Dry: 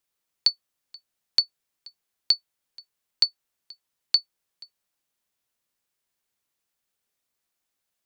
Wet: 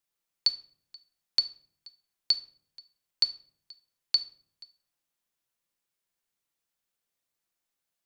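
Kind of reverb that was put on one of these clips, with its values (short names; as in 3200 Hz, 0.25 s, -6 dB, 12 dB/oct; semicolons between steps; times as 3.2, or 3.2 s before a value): shoebox room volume 880 m³, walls furnished, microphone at 0.79 m; gain -4.5 dB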